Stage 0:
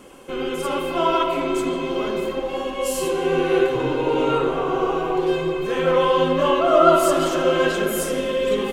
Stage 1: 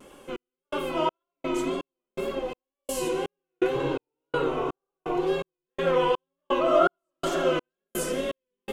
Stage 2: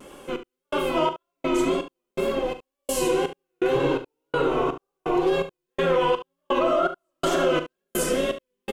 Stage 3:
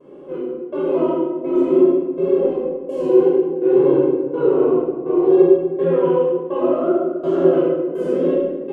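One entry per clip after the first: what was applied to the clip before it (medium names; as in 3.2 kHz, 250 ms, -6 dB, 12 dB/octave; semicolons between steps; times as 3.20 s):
trance gate "xxxx...." 166 bpm -60 dB; wow and flutter 81 cents; trim -5 dB
peak limiter -18.5 dBFS, peak gain reduction 10 dB; on a send: early reflections 40 ms -13 dB, 71 ms -13 dB; on the sum: trim +5 dB
band-pass filter 360 Hz, Q 2.5; simulated room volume 1000 m³, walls mixed, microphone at 5.4 m; trim +1.5 dB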